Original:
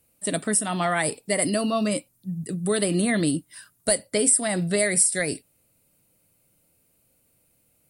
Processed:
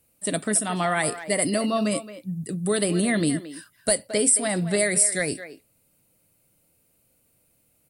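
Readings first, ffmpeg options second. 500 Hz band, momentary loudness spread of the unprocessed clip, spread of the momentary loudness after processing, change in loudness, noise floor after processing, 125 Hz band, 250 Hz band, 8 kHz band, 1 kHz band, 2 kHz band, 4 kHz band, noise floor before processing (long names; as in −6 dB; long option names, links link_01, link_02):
0.0 dB, 12 LU, 12 LU, 0.0 dB, −66 dBFS, 0.0 dB, 0.0 dB, 0.0 dB, +0.5 dB, 0.0 dB, 0.0 dB, −66 dBFS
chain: -filter_complex "[0:a]asplit=2[link_01][link_02];[link_02]adelay=220,highpass=300,lowpass=3400,asoftclip=type=hard:threshold=-15.5dB,volume=-12dB[link_03];[link_01][link_03]amix=inputs=2:normalize=0"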